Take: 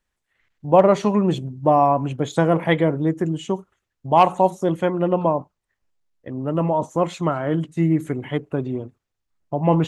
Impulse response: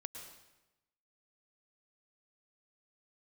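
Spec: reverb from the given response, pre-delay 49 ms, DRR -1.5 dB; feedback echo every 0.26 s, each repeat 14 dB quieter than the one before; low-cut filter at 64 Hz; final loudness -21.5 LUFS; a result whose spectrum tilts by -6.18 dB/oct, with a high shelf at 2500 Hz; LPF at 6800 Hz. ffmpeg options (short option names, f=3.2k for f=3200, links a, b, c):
-filter_complex "[0:a]highpass=64,lowpass=6.8k,highshelf=f=2.5k:g=-9,aecho=1:1:260|520:0.2|0.0399,asplit=2[a][b];[1:a]atrim=start_sample=2205,adelay=49[c];[b][c]afir=irnorm=-1:irlink=0,volume=4.5dB[d];[a][d]amix=inputs=2:normalize=0,volume=-4.5dB"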